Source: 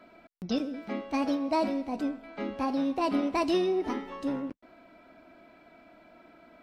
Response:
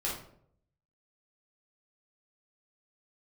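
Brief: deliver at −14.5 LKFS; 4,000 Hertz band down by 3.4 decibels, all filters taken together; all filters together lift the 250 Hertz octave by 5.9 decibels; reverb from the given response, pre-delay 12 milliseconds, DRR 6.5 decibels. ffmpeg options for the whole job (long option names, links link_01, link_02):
-filter_complex "[0:a]equalizer=frequency=250:width_type=o:gain=7,equalizer=frequency=4000:width_type=o:gain=-4.5,asplit=2[link_01][link_02];[1:a]atrim=start_sample=2205,adelay=12[link_03];[link_02][link_03]afir=irnorm=-1:irlink=0,volume=-11.5dB[link_04];[link_01][link_04]amix=inputs=2:normalize=0,volume=11dB"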